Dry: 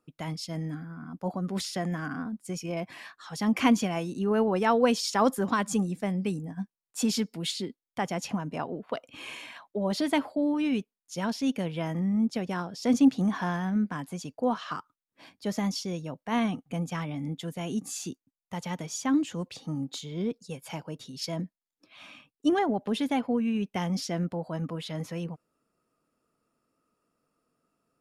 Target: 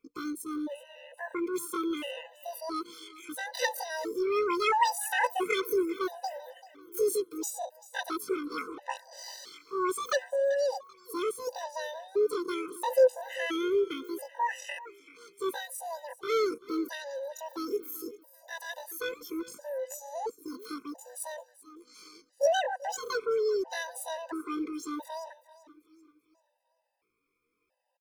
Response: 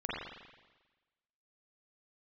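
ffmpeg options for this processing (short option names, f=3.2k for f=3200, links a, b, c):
-af "asetrate=83250,aresample=44100,atempo=0.529732,aecho=1:1:388|776|1164|1552:0.126|0.0554|0.0244|0.0107,afftfilt=real='re*gt(sin(2*PI*0.74*pts/sr)*(1-2*mod(floor(b*sr/1024/510),2)),0)':imag='im*gt(sin(2*PI*0.74*pts/sr)*(1-2*mod(floor(b*sr/1024/510),2)),0)':win_size=1024:overlap=0.75"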